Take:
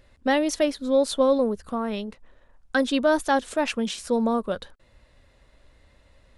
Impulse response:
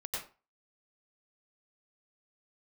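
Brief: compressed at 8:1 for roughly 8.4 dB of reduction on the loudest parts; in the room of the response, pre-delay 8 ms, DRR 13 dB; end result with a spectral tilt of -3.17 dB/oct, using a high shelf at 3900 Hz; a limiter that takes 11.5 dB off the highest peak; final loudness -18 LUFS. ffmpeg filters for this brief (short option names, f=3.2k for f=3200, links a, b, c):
-filter_complex "[0:a]highshelf=f=3.9k:g=5,acompressor=threshold=-24dB:ratio=8,alimiter=limit=-24dB:level=0:latency=1,asplit=2[a][b];[1:a]atrim=start_sample=2205,adelay=8[c];[b][c]afir=irnorm=-1:irlink=0,volume=-15dB[d];[a][d]amix=inputs=2:normalize=0,volume=15dB"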